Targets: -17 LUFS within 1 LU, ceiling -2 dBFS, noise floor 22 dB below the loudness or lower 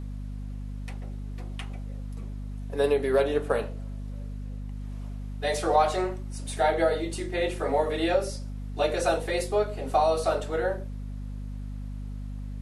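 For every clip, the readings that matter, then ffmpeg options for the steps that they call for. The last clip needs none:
hum 50 Hz; highest harmonic 250 Hz; hum level -33 dBFS; loudness -29.0 LUFS; peak level -10.5 dBFS; loudness target -17.0 LUFS
-> -af "bandreject=f=50:t=h:w=4,bandreject=f=100:t=h:w=4,bandreject=f=150:t=h:w=4,bandreject=f=200:t=h:w=4,bandreject=f=250:t=h:w=4"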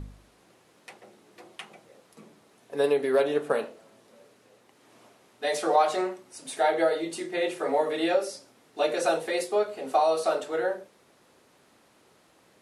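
hum not found; loudness -27.0 LUFS; peak level -11.0 dBFS; loudness target -17.0 LUFS
-> -af "volume=3.16,alimiter=limit=0.794:level=0:latency=1"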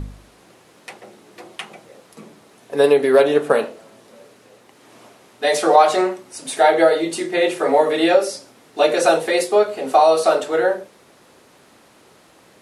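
loudness -17.0 LUFS; peak level -2.0 dBFS; noise floor -52 dBFS

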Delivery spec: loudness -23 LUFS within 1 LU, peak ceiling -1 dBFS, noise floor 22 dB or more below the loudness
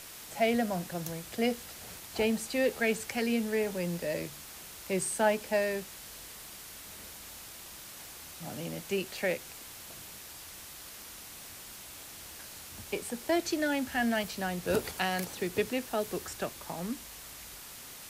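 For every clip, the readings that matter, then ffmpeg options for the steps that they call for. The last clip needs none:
noise floor -47 dBFS; noise floor target -56 dBFS; loudness -33.5 LUFS; peak level -13.5 dBFS; loudness target -23.0 LUFS
-> -af "afftdn=nr=9:nf=-47"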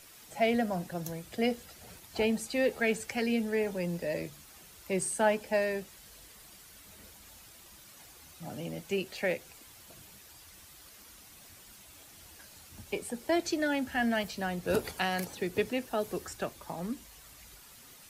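noise floor -54 dBFS; noise floor target -55 dBFS
-> -af "afftdn=nr=6:nf=-54"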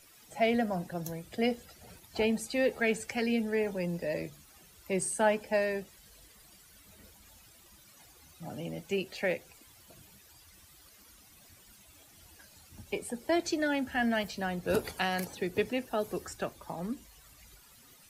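noise floor -58 dBFS; loudness -32.5 LUFS; peak level -14.0 dBFS; loudness target -23.0 LUFS
-> -af "volume=2.99"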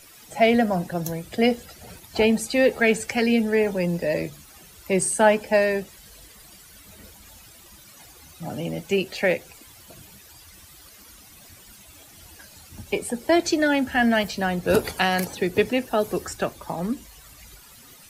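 loudness -23.0 LUFS; peak level -4.5 dBFS; noise floor -49 dBFS

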